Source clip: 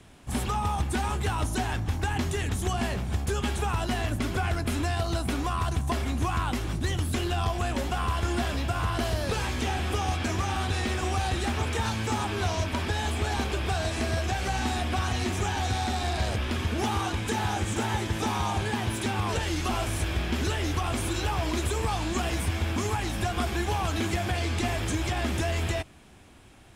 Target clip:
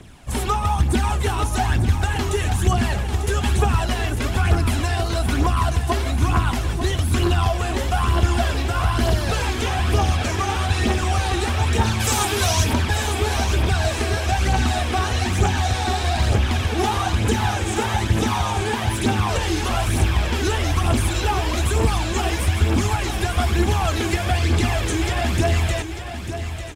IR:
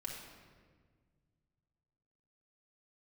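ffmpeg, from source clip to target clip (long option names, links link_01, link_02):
-filter_complex "[0:a]asplit=3[link_01][link_02][link_03];[link_01]afade=type=out:start_time=11.99:duration=0.02[link_04];[link_02]aemphasis=mode=production:type=75kf,afade=type=in:start_time=11.99:duration=0.02,afade=type=out:start_time=12.72:duration=0.02[link_05];[link_03]afade=type=in:start_time=12.72:duration=0.02[link_06];[link_04][link_05][link_06]amix=inputs=3:normalize=0,aphaser=in_gain=1:out_gain=1:delay=2.8:decay=0.5:speed=1.1:type=triangular,asplit=2[link_07][link_08];[link_08]aecho=0:1:895|1790|2685|3580|4475:0.335|0.141|0.0591|0.0248|0.0104[link_09];[link_07][link_09]amix=inputs=2:normalize=0,volume=5dB"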